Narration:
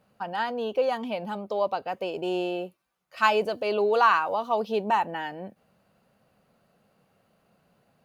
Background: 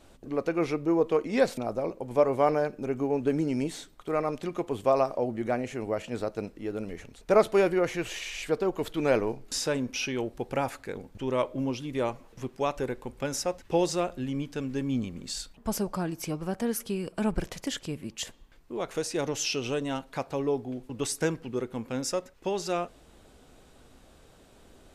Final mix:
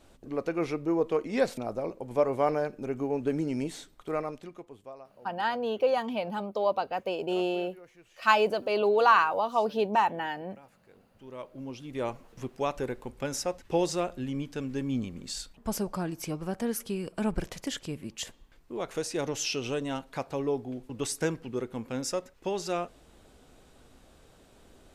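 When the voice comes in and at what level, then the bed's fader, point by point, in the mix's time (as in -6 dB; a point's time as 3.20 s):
5.05 s, -0.5 dB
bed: 4.14 s -2.5 dB
5.06 s -25.5 dB
10.74 s -25.5 dB
12.14 s -1.5 dB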